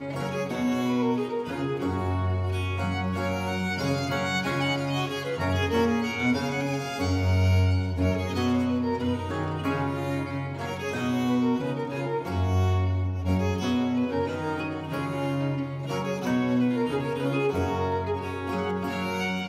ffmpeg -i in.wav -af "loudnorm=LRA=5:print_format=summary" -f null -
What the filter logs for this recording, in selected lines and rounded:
Input Integrated:    -27.2 LUFS
Input True Peak:     -13.1 dBTP
Input LRA:             2.4 LU
Input Threshold:     -37.2 LUFS